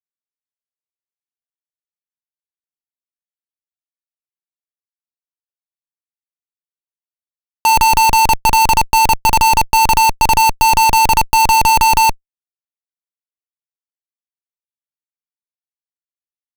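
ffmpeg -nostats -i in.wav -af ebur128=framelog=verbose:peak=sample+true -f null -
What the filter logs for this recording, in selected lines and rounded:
Integrated loudness:
  I:         -11.6 LUFS
  Threshold: -21.6 LUFS
Loudness range:
  LRA:         8.1 LU
  Threshold: -33.5 LUFS
  LRA low:   -19.6 LUFS
  LRA high:  -11.4 LUFS
Sample peak:
  Peak:       -3.9 dBFS
True peak:
  Peak:       -2.8 dBFS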